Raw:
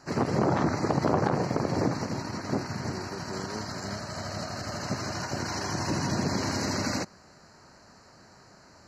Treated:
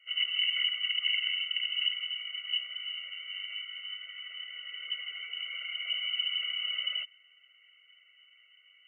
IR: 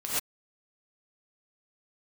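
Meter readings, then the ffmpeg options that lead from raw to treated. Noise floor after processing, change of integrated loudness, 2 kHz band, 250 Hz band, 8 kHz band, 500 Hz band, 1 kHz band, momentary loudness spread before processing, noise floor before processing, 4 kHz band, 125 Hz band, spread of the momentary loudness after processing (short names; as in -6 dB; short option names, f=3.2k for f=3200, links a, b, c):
-62 dBFS, -1.5 dB, +1.0 dB, under -40 dB, under -40 dB, under -35 dB, -27.5 dB, 9 LU, -55 dBFS, +11.0 dB, under -40 dB, 12 LU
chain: -af "equalizer=f=250:t=o:w=1:g=7,equalizer=f=500:t=o:w=1:g=-5,equalizer=f=1k:t=o:w=1:g=9,equalizer=f=2k:t=o:w=1:g=-11,lowpass=f=2.7k:t=q:w=0.5098,lowpass=f=2.7k:t=q:w=0.6013,lowpass=f=2.7k:t=q:w=0.9,lowpass=f=2.7k:t=q:w=2.563,afreqshift=-3200,afftfilt=real='re*eq(mod(floor(b*sr/1024/380),2),1)':imag='im*eq(mod(floor(b*sr/1024/380),2),1)':win_size=1024:overlap=0.75,volume=-6dB"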